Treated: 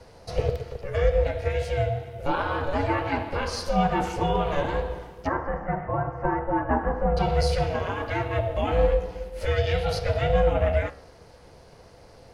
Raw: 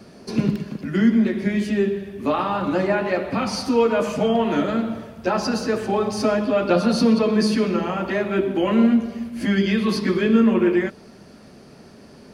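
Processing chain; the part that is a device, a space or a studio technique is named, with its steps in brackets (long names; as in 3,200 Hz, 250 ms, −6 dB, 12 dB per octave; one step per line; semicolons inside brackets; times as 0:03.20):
0:05.27–0:07.17: elliptic band-pass filter 240–1,700 Hz, stop band 40 dB
alien voice (ring modulation 280 Hz; flanger 0.49 Hz, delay 7.6 ms, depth 9.4 ms, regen +85%)
level +3 dB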